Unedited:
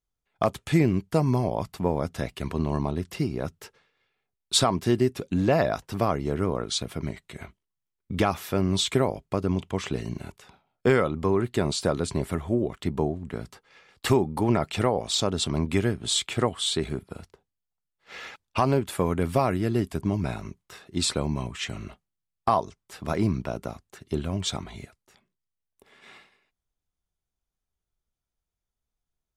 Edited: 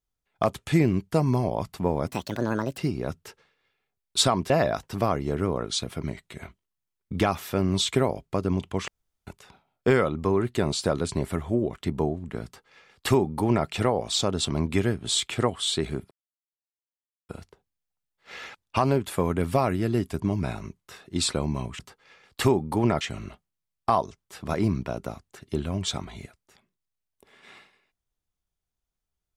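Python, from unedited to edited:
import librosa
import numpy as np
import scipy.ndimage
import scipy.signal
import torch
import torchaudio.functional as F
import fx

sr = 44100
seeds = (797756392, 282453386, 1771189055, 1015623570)

y = fx.edit(x, sr, fx.speed_span(start_s=2.07, length_s=1.07, speed=1.51),
    fx.cut(start_s=4.86, length_s=0.63),
    fx.room_tone_fill(start_s=9.87, length_s=0.39),
    fx.duplicate(start_s=13.44, length_s=1.22, to_s=21.6),
    fx.insert_silence(at_s=17.1, length_s=1.18), tone=tone)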